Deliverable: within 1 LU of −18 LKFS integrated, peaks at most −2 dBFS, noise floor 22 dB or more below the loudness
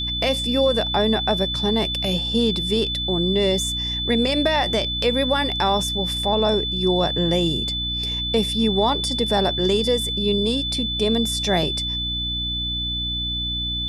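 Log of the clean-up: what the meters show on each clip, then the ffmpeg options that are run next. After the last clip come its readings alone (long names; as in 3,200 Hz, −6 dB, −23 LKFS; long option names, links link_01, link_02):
mains hum 60 Hz; hum harmonics up to 300 Hz; level of the hum −28 dBFS; interfering tone 3,500 Hz; level of the tone −24 dBFS; integrated loudness −20.5 LKFS; sample peak −7.5 dBFS; target loudness −18.0 LKFS
→ -af "bandreject=frequency=60:width_type=h:width=6,bandreject=frequency=120:width_type=h:width=6,bandreject=frequency=180:width_type=h:width=6,bandreject=frequency=240:width_type=h:width=6,bandreject=frequency=300:width_type=h:width=6"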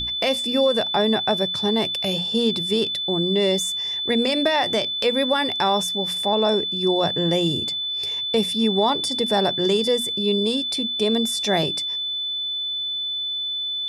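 mains hum none found; interfering tone 3,500 Hz; level of the tone −24 dBFS
→ -af "bandreject=frequency=3500:width=30"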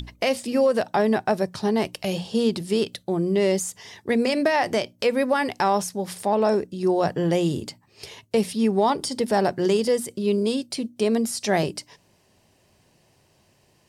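interfering tone none found; integrated loudness −23.5 LKFS; sample peak −10.0 dBFS; target loudness −18.0 LKFS
→ -af "volume=5.5dB"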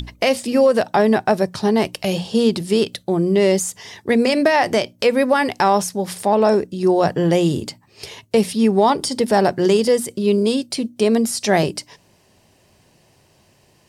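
integrated loudness −18.0 LKFS; sample peak −4.5 dBFS; background noise floor −57 dBFS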